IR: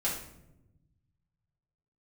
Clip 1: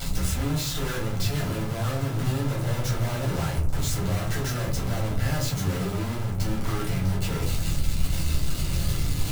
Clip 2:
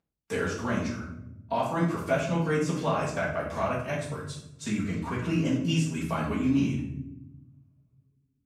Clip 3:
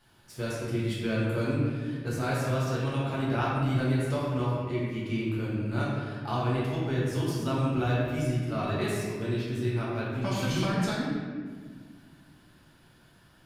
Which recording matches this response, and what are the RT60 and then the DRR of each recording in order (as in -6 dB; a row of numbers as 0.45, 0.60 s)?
2; 0.50 s, not exponential, 1.7 s; -7.0, -7.0, -8.0 dB